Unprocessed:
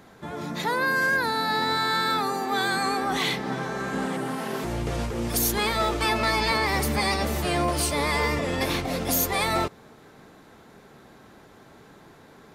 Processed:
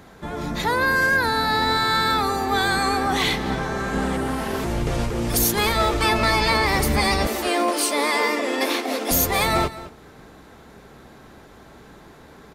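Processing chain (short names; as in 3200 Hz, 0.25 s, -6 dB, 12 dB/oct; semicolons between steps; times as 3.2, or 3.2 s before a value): octaver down 2 oct, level -4 dB; 7.27–9.11 steep high-pass 230 Hz 72 dB/oct; on a send: echo 0.214 s -16.5 dB; on the sum: gain +4 dB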